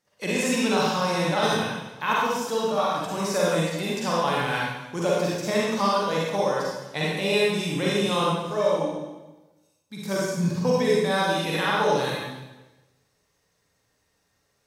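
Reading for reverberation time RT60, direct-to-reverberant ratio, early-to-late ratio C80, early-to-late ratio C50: 1.1 s, -6.0 dB, 0.5 dB, -3.5 dB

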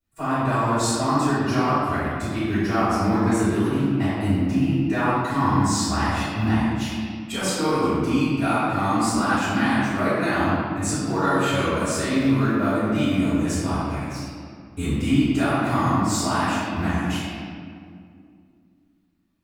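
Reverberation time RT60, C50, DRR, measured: 2.3 s, -4.5 dB, -19.5 dB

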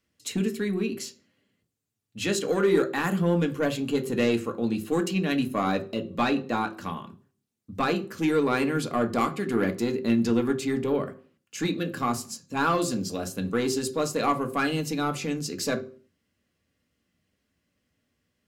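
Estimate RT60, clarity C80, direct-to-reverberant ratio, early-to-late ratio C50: 0.45 s, 19.5 dB, 5.0 dB, 15.5 dB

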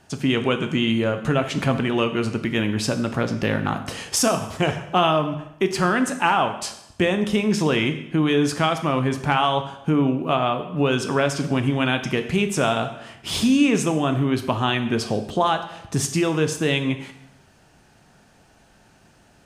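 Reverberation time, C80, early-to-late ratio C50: 0.85 s, 12.5 dB, 10.5 dB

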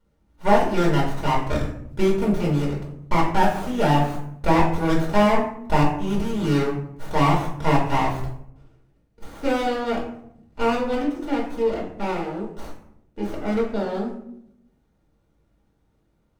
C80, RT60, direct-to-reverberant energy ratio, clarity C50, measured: 9.5 dB, 0.70 s, -4.0 dB, 6.0 dB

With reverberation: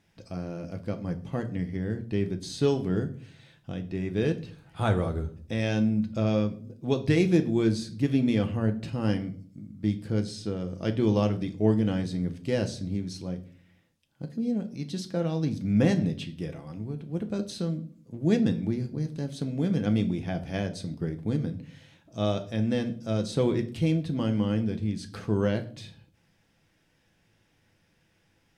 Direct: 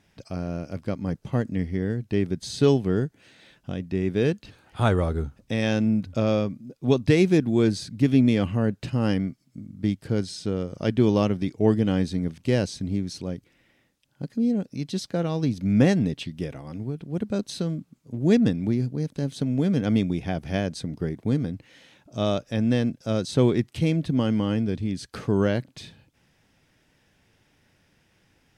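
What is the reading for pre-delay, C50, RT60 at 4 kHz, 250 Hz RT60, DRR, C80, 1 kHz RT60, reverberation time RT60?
6 ms, 14.5 dB, 0.35 s, 0.70 s, 6.0 dB, 19.5 dB, 0.40 s, 0.50 s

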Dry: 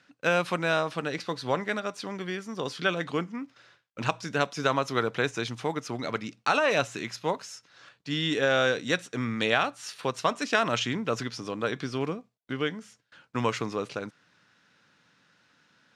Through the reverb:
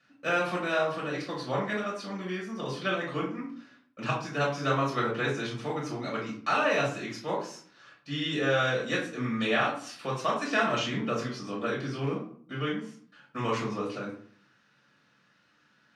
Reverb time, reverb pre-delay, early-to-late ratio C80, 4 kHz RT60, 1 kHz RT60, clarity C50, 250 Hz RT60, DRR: 0.55 s, 4 ms, 10.0 dB, 0.35 s, 0.50 s, 5.5 dB, 0.75 s, -5.5 dB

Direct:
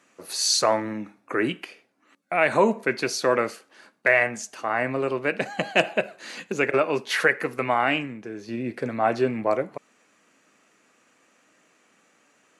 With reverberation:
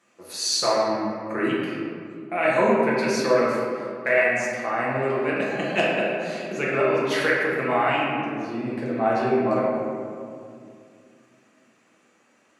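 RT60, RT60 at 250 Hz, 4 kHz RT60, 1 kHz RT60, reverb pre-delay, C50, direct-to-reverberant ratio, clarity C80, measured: 2.3 s, 3.3 s, 1.1 s, 2.1 s, 5 ms, -1.5 dB, -6.0 dB, 1.0 dB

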